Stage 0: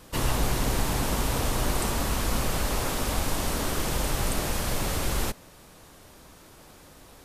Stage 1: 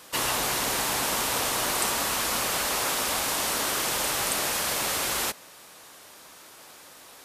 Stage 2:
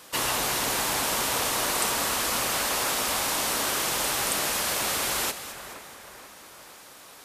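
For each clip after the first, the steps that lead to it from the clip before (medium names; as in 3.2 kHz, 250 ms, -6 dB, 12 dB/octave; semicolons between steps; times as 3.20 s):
high-pass 990 Hz 6 dB/octave; trim +6 dB
two-band feedback delay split 2.4 kHz, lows 479 ms, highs 213 ms, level -12 dB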